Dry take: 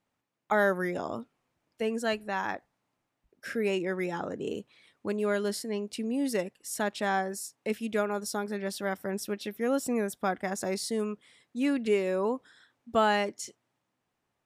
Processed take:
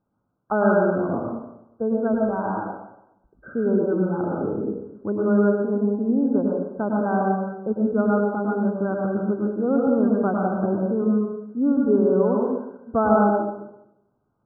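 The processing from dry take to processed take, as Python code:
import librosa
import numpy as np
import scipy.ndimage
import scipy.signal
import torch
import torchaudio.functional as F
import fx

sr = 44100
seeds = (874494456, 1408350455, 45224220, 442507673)

y = fx.brickwall_lowpass(x, sr, high_hz=1600.0)
y = fx.low_shelf(y, sr, hz=470.0, db=9.0)
y = fx.rev_plate(y, sr, seeds[0], rt60_s=0.86, hf_ratio=0.75, predelay_ms=90, drr_db=-2.0)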